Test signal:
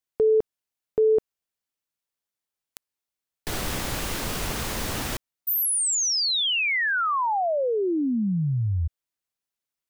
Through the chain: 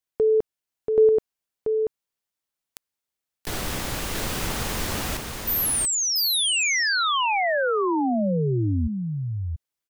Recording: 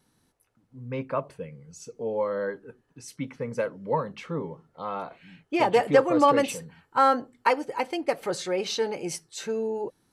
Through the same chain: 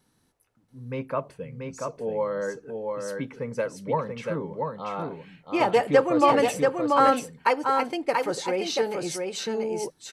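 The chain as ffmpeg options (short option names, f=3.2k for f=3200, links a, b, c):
-af "aecho=1:1:684:0.631"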